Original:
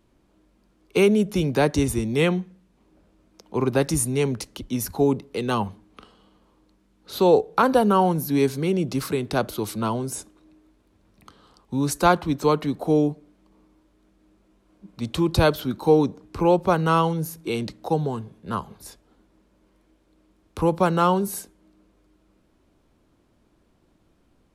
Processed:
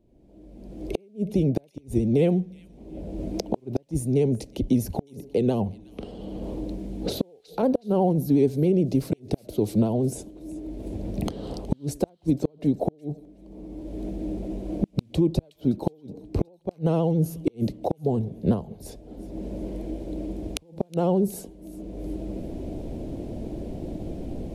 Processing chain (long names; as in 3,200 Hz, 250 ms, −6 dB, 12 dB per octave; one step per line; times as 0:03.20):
camcorder AGC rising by 32 dB per second
drawn EQ curve 670 Hz 0 dB, 1,200 Hz −25 dB, 2,300 Hz −14 dB
pitch vibrato 14 Hz 62 cents
gate with flip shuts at −10 dBFS, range −36 dB
on a send: delay with a high-pass on its return 368 ms, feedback 39%, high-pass 2,200 Hz, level −18 dB